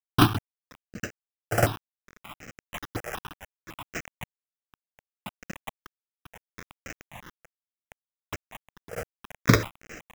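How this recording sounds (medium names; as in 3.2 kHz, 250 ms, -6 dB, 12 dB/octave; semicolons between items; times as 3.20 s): a quantiser's noise floor 6-bit, dither none; chopped level 0.78 Hz, depth 60%, duty 55%; aliases and images of a low sample rate 4.4 kHz, jitter 0%; notches that jump at a steady rate 5.4 Hz 1–3.5 kHz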